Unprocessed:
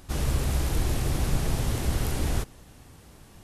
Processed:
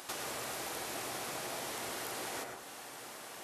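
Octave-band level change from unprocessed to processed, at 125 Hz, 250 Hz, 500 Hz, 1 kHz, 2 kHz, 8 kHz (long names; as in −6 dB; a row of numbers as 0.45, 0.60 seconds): −29.0, −15.5, −6.5, −2.5, −2.5, −4.0 decibels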